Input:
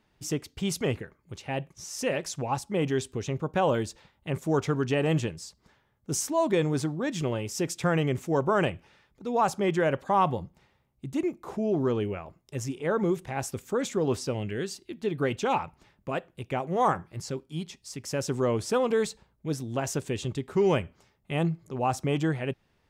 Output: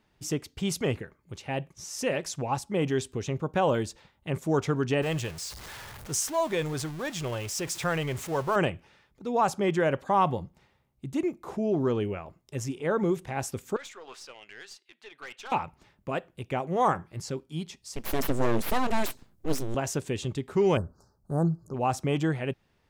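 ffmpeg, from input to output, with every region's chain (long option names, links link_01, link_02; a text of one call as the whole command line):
ffmpeg -i in.wav -filter_complex "[0:a]asettb=1/sr,asplit=3[link_01][link_02][link_03];[link_01]atrim=end=5.024[link_04];[link_02]atrim=start=5.02:end=8.56,asetpts=PTS-STARTPTS,afade=type=in:duration=0.004:curve=qsin,afade=type=out:start_time=3.536:duration=0.004:curve=qsin,aeval=exprs='val(0)+0.5*0.0158*sgn(val(0))':channel_layout=same,equalizer=frequency=250:width=0.78:gain=-9.5[link_05];[link_03]atrim=start=8.556[link_06];[link_04][link_05]acrossfade=duration=0.004:curve1=hsin:curve2=qsin[link_07];[link_07][link_06]acrossfade=duration=0.004:curve1=qsin:curve2=hsin,asettb=1/sr,asplit=3[link_08][link_09][link_10];[link_08]atrim=end=13.764[link_11];[link_09]atrim=start=13.76:end=15.52,asetpts=PTS-STARTPTS,afade=type=in:duration=0.004:curve=qsin,afade=type=out:start_time=1.756:duration=0.004:curve=qsin,highpass=1300,aemphasis=mode=reproduction:type=50fm,aeval=exprs='(tanh(63.1*val(0)+0.35)-tanh(0.35))/63.1':channel_layout=same[link_12];[link_10]atrim=start=15.516[link_13];[link_11][link_12]acrossfade=duration=0.004:curve1=hsin:curve2=qsin[link_14];[link_14][link_13]acrossfade=duration=0.004:curve1=qsin:curve2=hsin,asettb=1/sr,asplit=3[link_15][link_16][link_17];[link_15]atrim=end=17.964[link_18];[link_16]atrim=start=17.96:end=19.75,asetpts=PTS-STARTPTS,afade=type=in:duration=0.004:curve=qsin,afade=type=out:start_time=1.786:duration=0.004:curve=qsin,bass=frequency=250:gain=9,treble=frequency=4000:gain=8,aeval=exprs='abs(val(0))':channel_layout=same[link_19];[link_17]atrim=start=19.746[link_20];[link_18][link_19]acrossfade=duration=0.004:curve1=hsin:curve2=qsin[link_21];[link_21][link_20]acrossfade=duration=0.004:curve1=qsin:curve2=hsin,asettb=1/sr,asplit=3[link_22][link_23][link_24];[link_22]atrim=end=20.774[link_25];[link_23]atrim=start=20.77:end=21.74,asetpts=PTS-STARTPTS,afade=type=in:duration=0.004:curve=qsin,afade=type=out:start_time=0.966:duration=0.004:curve=qsin,asuperstop=centerf=2600:order=12:qfactor=0.93,lowshelf=frequency=84:gain=9[link_26];[link_24]atrim=start=21.736[link_27];[link_25][link_26]acrossfade=duration=0.004:curve1=hsin:curve2=qsin[link_28];[link_28][link_27]acrossfade=duration=0.004:curve1=qsin:curve2=hsin" out.wav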